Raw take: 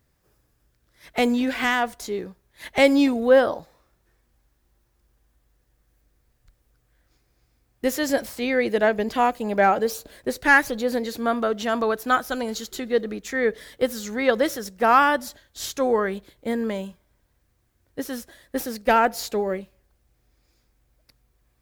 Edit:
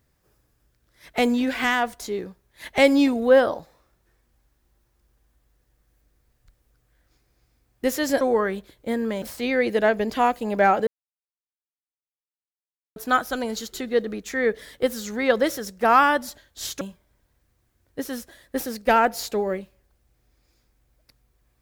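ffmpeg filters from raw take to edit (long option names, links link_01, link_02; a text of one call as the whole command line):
ffmpeg -i in.wav -filter_complex "[0:a]asplit=6[link_01][link_02][link_03][link_04][link_05][link_06];[link_01]atrim=end=8.212[link_07];[link_02]atrim=start=15.798:end=16.812[link_08];[link_03]atrim=start=8.208:end=9.86,asetpts=PTS-STARTPTS,afade=type=out:start_time=1.648:duration=0.004:curve=hsin[link_09];[link_04]atrim=start=9.86:end=11.95,asetpts=PTS-STARTPTS,volume=0[link_10];[link_05]atrim=start=11.95:end=15.802,asetpts=PTS-STARTPTS,afade=type=in:duration=0.004:curve=hsin[link_11];[link_06]atrim=start=16.808[link_12];[link_07][link_08]acrossfade=duration=0.004:curve1=hsin:curve2=hsin[link_13];[link_09][link_10][link_11]concat=n=3:v=0:a=1[link_14];[link_13][link_14]acrossfade=duration=0.004:curve1=hsin:curve2=hsin[link_15];[link_15][link_12]acrossfade=duration=0.004:curve1=hsin:curve2=hsin" out.wav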